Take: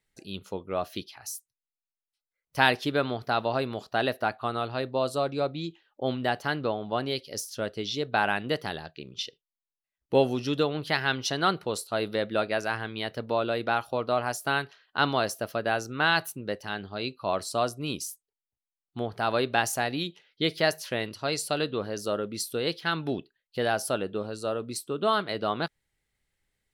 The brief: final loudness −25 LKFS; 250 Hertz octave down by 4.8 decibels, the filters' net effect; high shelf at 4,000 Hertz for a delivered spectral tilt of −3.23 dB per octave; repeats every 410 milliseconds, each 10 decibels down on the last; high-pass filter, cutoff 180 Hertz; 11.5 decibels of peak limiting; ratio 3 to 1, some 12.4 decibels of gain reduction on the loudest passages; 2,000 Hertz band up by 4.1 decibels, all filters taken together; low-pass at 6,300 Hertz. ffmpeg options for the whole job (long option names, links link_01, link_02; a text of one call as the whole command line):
ffmpeg -i in.wav -af "highpass=180,lowpass=6300,equalizer=frequency=250:width_type=o:gain=-5,equalizer=frequency=2000:width_type=o:gain=6.5,highshelf=frequency=4000:gain=-3,acompressor=threshold=-30dB:ratio=3,alimiter=level_in=0.5dB:limit=-24dB:level=0:latency=1,volume=-0.5dB,aecho=1:1:410|820|1230|1640:0.316|0.101|0.0324|0.0104,volume=13dB" out.wav